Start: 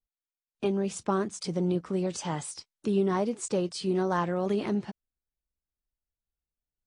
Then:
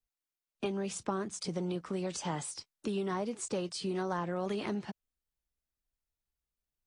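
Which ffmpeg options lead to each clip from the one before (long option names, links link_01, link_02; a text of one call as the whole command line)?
ffmpeg -i in.wav -filter_complex "[0:a]acrossover=split=140|750[link_01][link_02][link_03];[link_01]acompressor=threshold=-50dB:ratio=4[link_04];[link_02]acompressor=threshold=-35dB:ratio=4[link_05];[link_03]acompressor=threshold=-37dB:ratio=4[link_06];[link_04][link_05][link_06]amix=inputs=3:normalize=0" out.wav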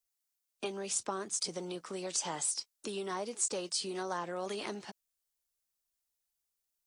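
ffmpeg -i in.wav -af "bass=frequency=250:gain=-13,treble=frequency=4000:gain=10,volume=-1dB" out.wav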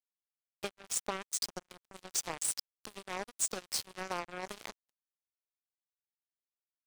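ffmpeg -i in.wav -af "acrusher=bits=4:mix=0:aa=0.5" out.wav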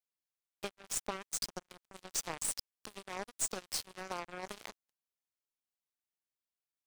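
ffmpeg -i in.wav -af "aeval=exprs='(tanh(12.6*val(0)+0.45)-tanh(0.45))/12.6':channel_layout=same" out.wav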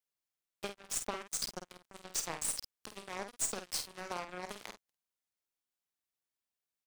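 ffmpeg -i in.wav -filter_complex "[0:a]asplit=2[link_01][link_02];[link_02]adelay=50,volume=-8dB[link_03];[link_01][link_03]amix=inputs=2:normalize=0" out.wav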